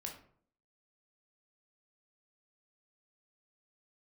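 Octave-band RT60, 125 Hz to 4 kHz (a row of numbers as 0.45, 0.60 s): 0.65, 0.70, 0.60, 0.55, 0.40, 0.30 s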